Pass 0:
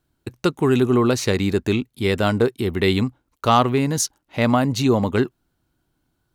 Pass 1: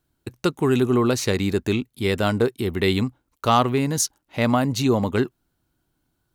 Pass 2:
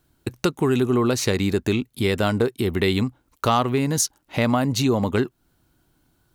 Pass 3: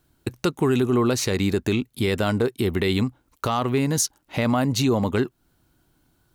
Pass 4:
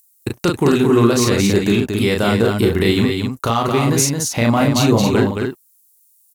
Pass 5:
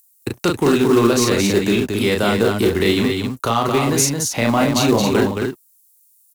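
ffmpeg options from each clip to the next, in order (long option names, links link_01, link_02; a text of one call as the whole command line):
ffmpeg -i in.wav -af "highshelf=frequency=7600:gain=4.5,volume=-2dB" out.wav
ffmpeg -i in.wav -af "acompressor=threshold=-32dB:ratio=2,volume=8dB" out.wav
ffmpeg -i in.wav -af "alimiter=limit=-12dB:level=0:latency=1:release=17" out.wav
ffmpeg -i in.wav -filter_complex "[0:a]acrossover=split=7000[link_01][link_02];[link_01]aeval=exprs='sgn(val(0))*max(abs(val(0))-0.00335,0)':channel_layout=same[link_03];[link_02]acompressor=mode=upward:threshold=-51dB:ratio=2.5[link_04];[link_03][link_04]amix=inputs=2:normalize=0,aecho=1:1:34.99|221.6|271.1:0.708|0.562|0.447,volume=4.5dB" out.wav
ffmpeg -i in.wav -filter_complex "[0:a]acrossover=split=210|590|2500[link_01][link_02][link_03][link_04];[link_01]asoftclip=type=tanh:threshold=-24.5dB[link_05];[link_02]acrusher=bits=4:mode=log:mix=0:aa=0.000001[link_06];[link_05][link_06][link_03][link_04]amix=inputs=4:normalize=0" out.wav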